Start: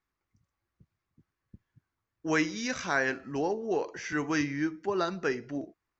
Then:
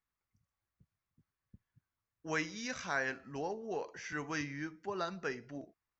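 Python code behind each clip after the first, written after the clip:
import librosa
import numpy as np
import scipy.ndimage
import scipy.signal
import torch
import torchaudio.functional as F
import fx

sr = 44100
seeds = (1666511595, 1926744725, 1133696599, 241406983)

y = fx.peak_eq(x, sr, hz=330.0, db=-6.5, octaves=0.63)
y = y * 10.0 ** (-6.5 / 20.0)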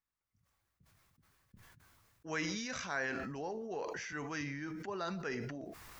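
y = fx.sustainer(x, sr, db_per_s=23.0)
y = y * 10.0 ** (-3.0 / 20.0)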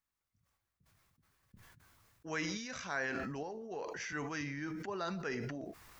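y = fx.tremolo_random(x, sr, seeds[0], hz=3.5, depth_pct=55)
y = y * 10.0 ** (2.0 / 20.0)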